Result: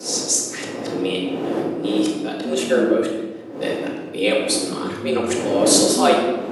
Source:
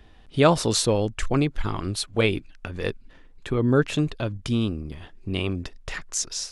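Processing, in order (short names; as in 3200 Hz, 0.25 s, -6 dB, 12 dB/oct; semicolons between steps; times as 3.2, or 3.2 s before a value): whole clip reversed; wind noise 370 Hz -31 dBFS; bell 260 Hz +11 dB 1.8 oct; frequency shift +85 Hz; RIAA curve recording; shoebox room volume 730 m³, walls mixed, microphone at 2 m; gain -4.5 dB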